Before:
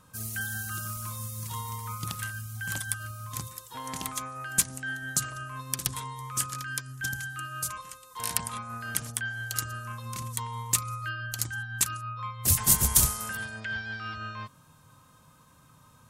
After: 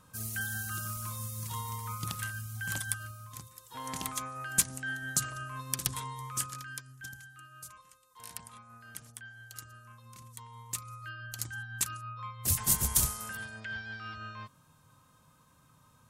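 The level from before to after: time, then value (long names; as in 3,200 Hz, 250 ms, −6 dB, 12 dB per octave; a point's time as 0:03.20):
0:02.91 −2 dB
0:03.49 −12 dB
0:03.82 −2 dB
0:06.21 −2 dB
0:07.28 −15 dB
0:10.29 −15 dB
0:11.55 −5.5 dB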